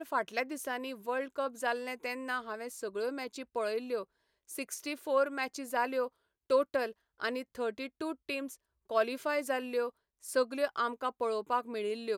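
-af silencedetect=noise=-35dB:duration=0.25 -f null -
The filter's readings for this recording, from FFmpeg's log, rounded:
silence_start: 4.02
silence_end: 4.51 | silence_duration: 0.49
silence_start: 6.07
silence_end: 6.50 | silence_duration: 0.43
silence_start: 6.89
silence_end: 7.22 | silence_duration: 0.33
silence_start: 8.46
silence_end: 8.91 | silence_duration: 0.45
silence_start: 9.88
silence_end: 10.28 | silence_duration: 0.40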